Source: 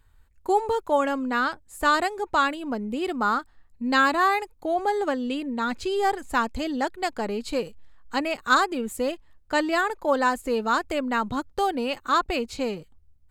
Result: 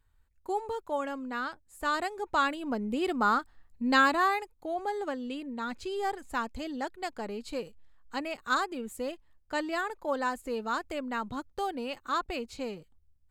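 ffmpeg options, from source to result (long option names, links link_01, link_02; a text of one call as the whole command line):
ffmpeg -i in.wav -af "volume=-2dB,afade=type=in:start_time=1.8:duration=1.13:silence=0.398107,afade=type=out:start_time=3.92:duration=0.6:silence=0.473151" out.wav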